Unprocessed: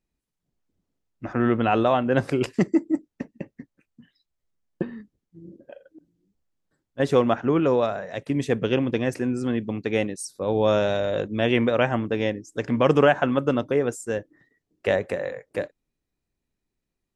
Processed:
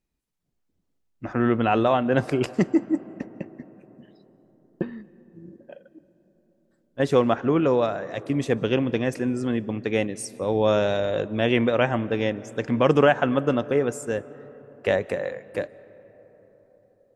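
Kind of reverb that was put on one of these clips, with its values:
comb and all-pass reverb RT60 4.8 s, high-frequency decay 0.3×, pre-delay 110 ms, DRR 19.5 dB

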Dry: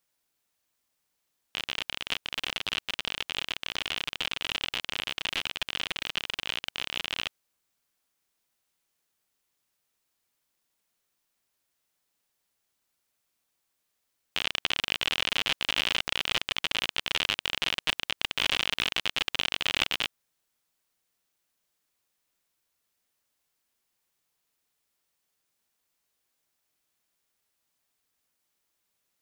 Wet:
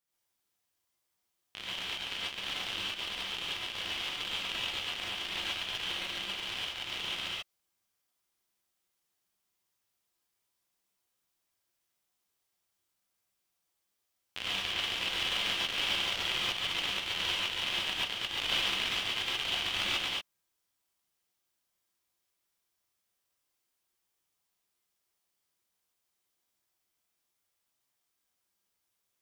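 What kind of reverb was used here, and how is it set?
reverb whose tail is shaped and stops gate 160 ms rising, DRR −6.5 dB
level −10.5 dB

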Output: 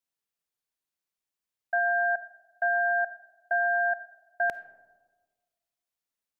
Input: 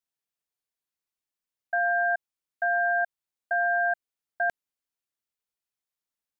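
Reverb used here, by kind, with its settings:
comb and all-pass reverb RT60 1.4 s, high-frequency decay 0.3×, pre-delay 10 ms, DRR 14.5 dB

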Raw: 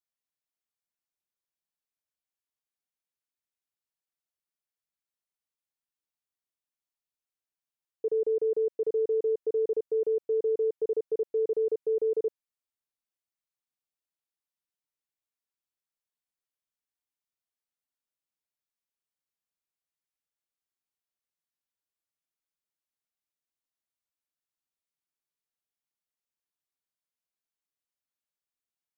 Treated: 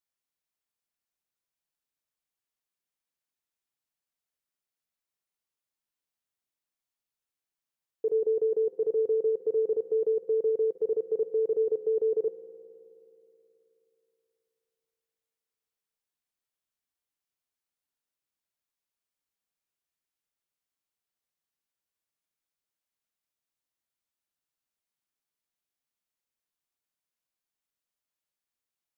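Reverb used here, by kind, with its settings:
spring reverb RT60 3.2 s, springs 53 ms, chirp 75 ms, DRR 10.5 dB
level +1.5 dB

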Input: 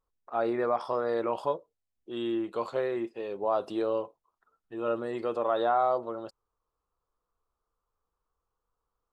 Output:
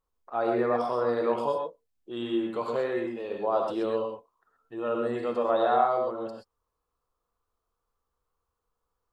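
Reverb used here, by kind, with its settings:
reverb whose tail is shaped and stops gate 150 ms rising, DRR 1.5 dB

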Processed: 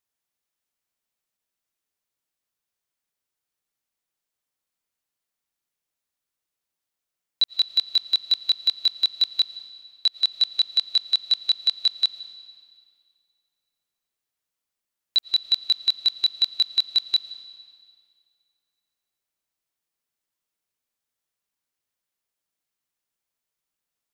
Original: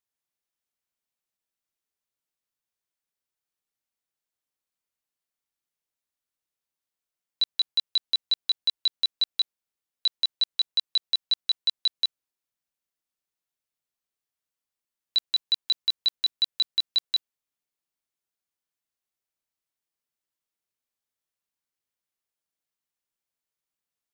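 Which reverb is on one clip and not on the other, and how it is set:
comb and all-pass reverb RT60 2.1 s, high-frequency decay 0.95×, pre-delay 70 ms, DRR 14 dB
level +3.5 dB

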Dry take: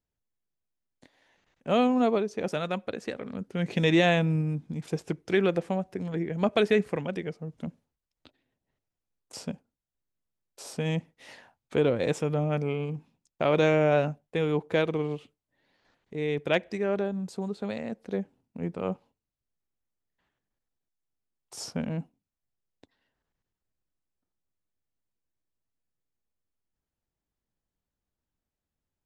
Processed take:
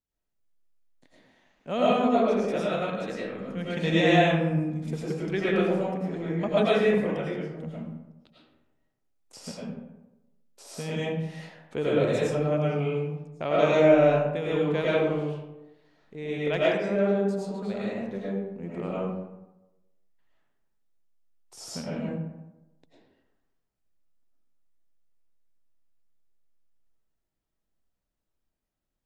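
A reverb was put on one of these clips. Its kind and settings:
comb and all-pass reverb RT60 1 s, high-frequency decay 0.5×, pre-delay 65 ms, DRR −7.5 dB
level −6 dB

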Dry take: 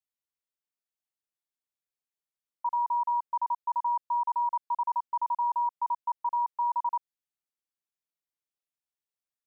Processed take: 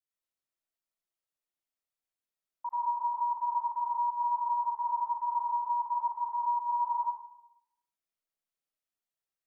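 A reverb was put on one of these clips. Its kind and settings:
comb and all-pass reverb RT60 0.82 s, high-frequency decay 0.4×, pre-delay 60 ms, DRR −5.5 dB
level −6.5 dB

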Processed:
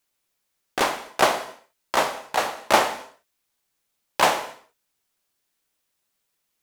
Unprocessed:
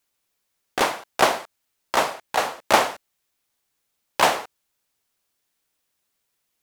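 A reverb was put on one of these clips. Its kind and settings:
reverb whose tail is shaped and stops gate 290 ms falling, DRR 10.5 dB
level −1 dB

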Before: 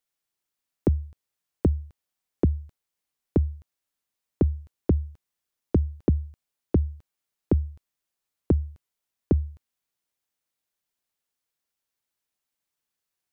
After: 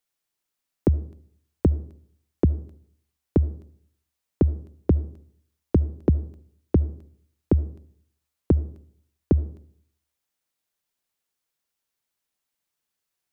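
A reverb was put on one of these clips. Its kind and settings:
comb and all-pass reverb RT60 0.61 s, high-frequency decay 0.4×, pre-delay 30 ms, DRR 19 dB
level +2 dB

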